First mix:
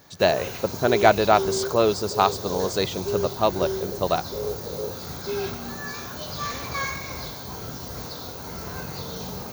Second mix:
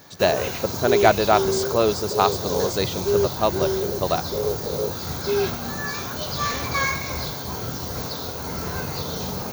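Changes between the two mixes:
background +7.5 dB; reverb: off

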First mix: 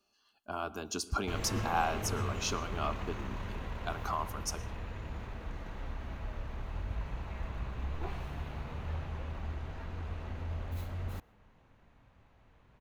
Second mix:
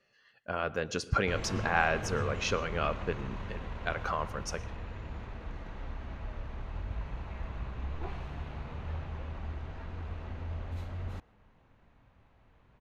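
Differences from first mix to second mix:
speech: remove static phaser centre 510 Hz, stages 6; master: add distance through air 66 m

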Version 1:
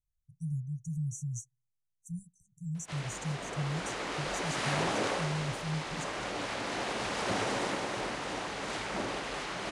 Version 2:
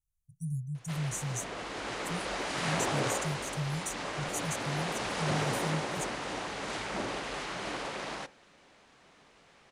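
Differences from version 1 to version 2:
speech: remove distance through air 70 m; background: entry -2.00 s

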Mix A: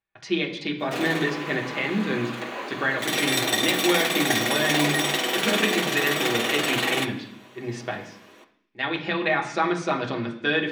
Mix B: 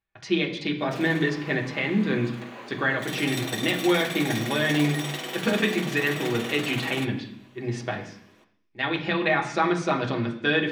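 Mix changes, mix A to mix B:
background -9.0 dB; master: add bass shelf 110 Hz +10.5 dB

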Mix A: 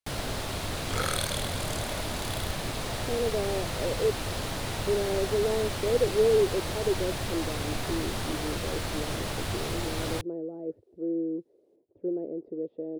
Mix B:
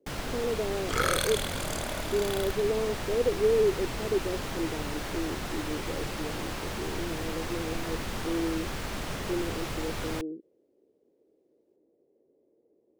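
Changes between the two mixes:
speech: entry -2.75 s; second sound +5.5 dB; master: add fifteen-band graphic EQ 100 Hz -7 dB, 630 Hz -4 dB, 4 kHz -5 dB, 10 kHz -6 dB

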